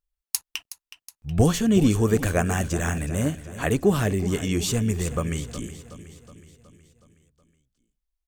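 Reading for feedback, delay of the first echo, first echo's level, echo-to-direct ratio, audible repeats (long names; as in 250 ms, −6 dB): 56%, 369 ms, −14.0 dB, −12.5 dB, 5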